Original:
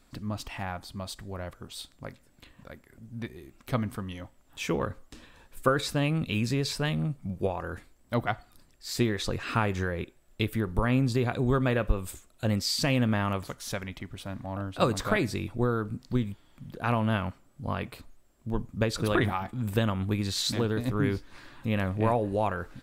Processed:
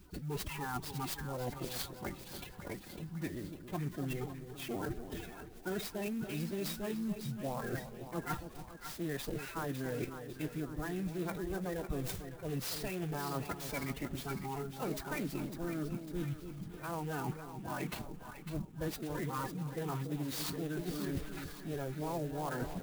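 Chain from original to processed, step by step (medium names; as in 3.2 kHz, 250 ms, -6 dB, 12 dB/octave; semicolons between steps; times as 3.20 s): coarse spectral quantiser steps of 30 dB; reverse; compression 12:1, threshold -40 dBFS, peak gain reduction 23 dB; reverse; formant-preserving pitch shift +6 st; two-band feedback delay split 870 Hz, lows 284 ms, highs 552 ms, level -9 dB; sampling jitter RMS 0.039 ms; trim +5.5 dB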